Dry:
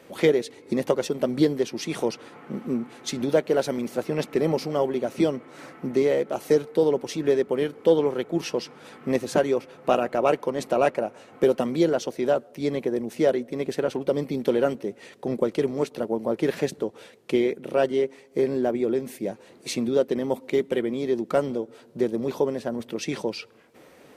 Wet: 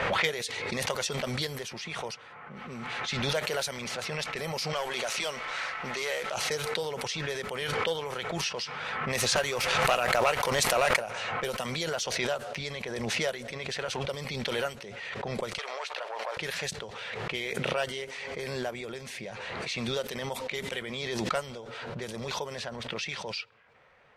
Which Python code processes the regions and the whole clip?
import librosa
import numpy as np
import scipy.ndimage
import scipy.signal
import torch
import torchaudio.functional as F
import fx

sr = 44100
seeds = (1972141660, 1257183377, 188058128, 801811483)

y = fx.chain(x, sr, fx.peak_eq(hz=4500.0, db=-6.0, octaves=2.0),
    fx.quant_float(bits=8), at=(1.55, 2.56))
y = fx.chain(y, sr, fx.highpass(hz=590.0, slope=6),
    fx.leveller(passes=1),
    fx.env_flatten(amount_pct=50), at=(4.73, 6.32))
y = fx.chain(y, sr, fx.leveller(passes=1),
    fx.pre_swell(db_per_s=88.0), at=(9.34, 11.02))
y = fx.chain(y, sr, fx.leveller(passes=1),
    fx.highpass(hz=580.0, slope=24), at=(15.58, 16.37))
y = fx.env_lowpass(y, sr, base_hz=1600.0, full_db=-18.0)
y = fx.tone_stack(y, sr, knobs='10-0-10')
y = fx.pre_swell(y, sr, db_per_s=21.0)
y = y * librosa.db_to_amplitude(5.0)